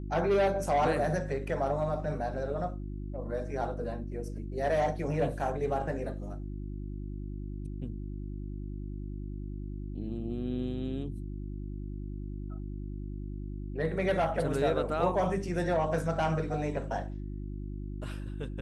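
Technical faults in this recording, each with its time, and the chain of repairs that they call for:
mains hum 50 Hz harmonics 7 −38 dBFS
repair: hum removal 50 Hz, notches 7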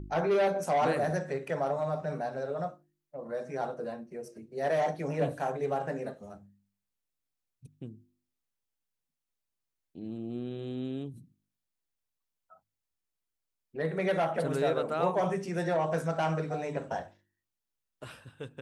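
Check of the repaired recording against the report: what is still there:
none of them is left

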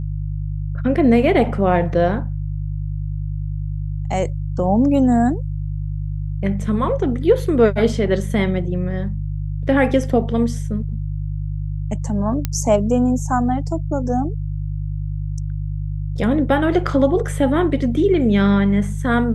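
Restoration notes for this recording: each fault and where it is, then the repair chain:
mains hum 50 Hz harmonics 3 −24 dBFS
0:12.45: click −7 dBFS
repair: click removal
hum removal 50 Hz, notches 3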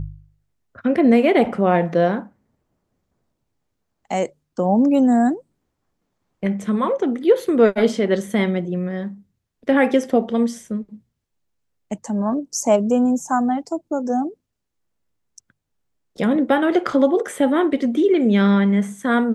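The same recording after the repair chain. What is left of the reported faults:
none of them is left

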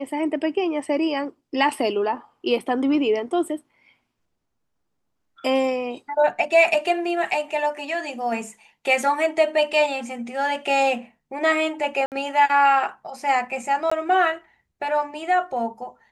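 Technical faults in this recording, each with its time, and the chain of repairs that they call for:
0:12.06–0:12.12: drop-out 58 ms
0:13.90–0:13.91: drop-out 15 ms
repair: repair the gap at 0:12.06, 58 ms
repair the gap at 0:13.90, 15 ms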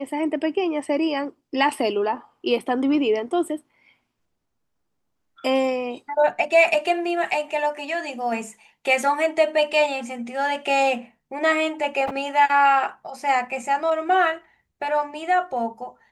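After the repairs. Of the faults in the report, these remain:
none of them is left

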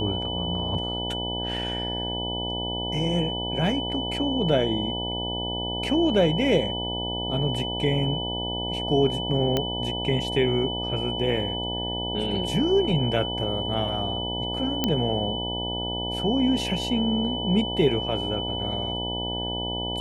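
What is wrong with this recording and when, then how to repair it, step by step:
mains buzz 60 Hz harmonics 16 −32 dBFS
whistle 3,000 Hz −30 dBFS
0:09.57: click −10 dBFS
0:14.84: click −8 dBFS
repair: click removal
hum removal 60 Hz, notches 16
notch filter 3,000 Hz, Q 30

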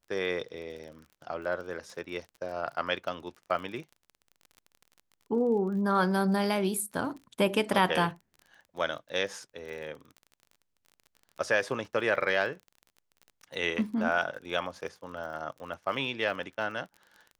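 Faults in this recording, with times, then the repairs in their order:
surface crackle 31 per second −40 dBFS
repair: click removal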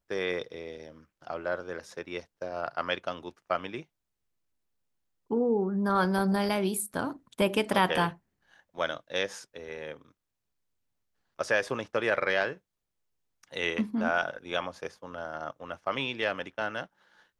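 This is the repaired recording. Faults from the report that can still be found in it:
none of them is left

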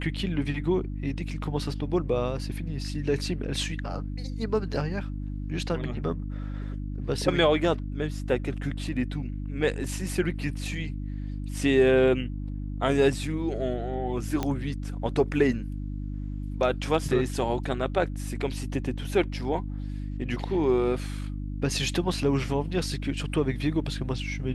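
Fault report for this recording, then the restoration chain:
mains hum 50 Hz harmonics 6 −33 dBFS
0:14.43: click −14 dBFS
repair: click removal
hum removal 50 Hz, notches 6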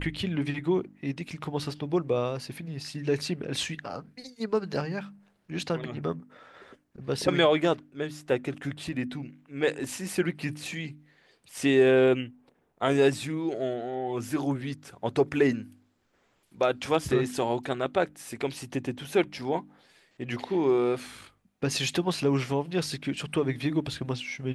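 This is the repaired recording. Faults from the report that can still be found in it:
none of them is left

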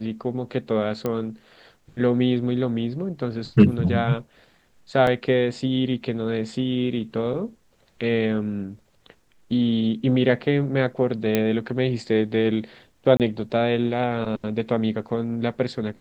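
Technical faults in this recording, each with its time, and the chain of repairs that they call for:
0:01.06: click −13 dBFS
0:05.07: drop-out 2.1 ms
0:11.35: click −7 dBFS
0:13.17–0:13.20: drop-out 28 ms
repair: click removal
repair the gap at 0:05.07, 2.1 ms
repair the gap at 0:13.17, 28 ms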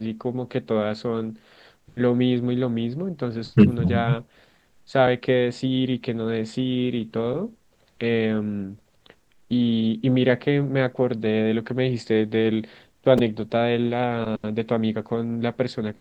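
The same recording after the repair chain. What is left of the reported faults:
none of them is left

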